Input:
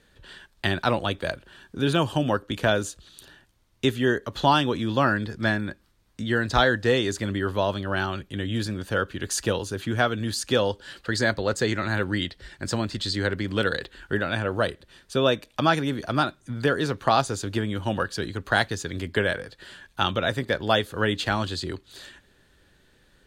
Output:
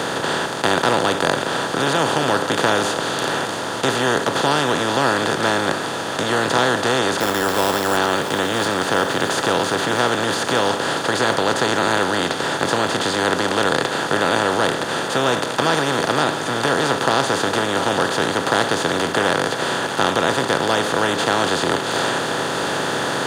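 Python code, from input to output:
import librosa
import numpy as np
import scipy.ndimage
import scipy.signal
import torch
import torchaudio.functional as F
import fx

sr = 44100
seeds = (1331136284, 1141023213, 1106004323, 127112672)

p1 = fx.bin_compress(x, sr, power=0.2)
p2 = scipy.signal.sosfilt(scipy.signal.butter(4, 110.0, 'highpass', fs=sr, output='sos'), p1)
p3 = fx.rider(p2, sr, range_db=10, speed_s=2.0)
p4 = p2 + (p3 * librosa.db_to_amplitude(-0.5))
p5 = fx.sample_hold(p4, sr, seeds[0], rate_hz=8700.0, jitter_pct=0, at=(7.2, 7.97))
p6 = p5 + fx.echo_thinned(p5, sr, ms=679, feedback_pct=64, hz=420.0, wet_db=-11.5, dry=0)
y = p6 * librosa.db_to_amplitude(-11.0)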